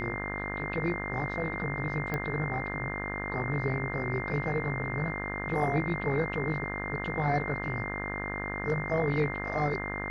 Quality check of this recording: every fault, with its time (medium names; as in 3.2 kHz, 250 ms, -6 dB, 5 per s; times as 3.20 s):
buzz 50 Hz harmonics 38 -37 dBFS
whine 2.1 kHz -36 dBFS
2.14 s: pop -19 dBFS